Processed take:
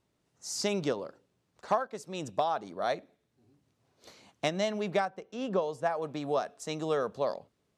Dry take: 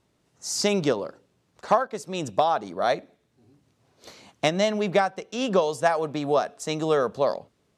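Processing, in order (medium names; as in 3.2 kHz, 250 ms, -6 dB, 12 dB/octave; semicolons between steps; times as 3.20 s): 5.05–6.02 s: treble shelf 2.4 kHz -10 dB; trim -7.5 dB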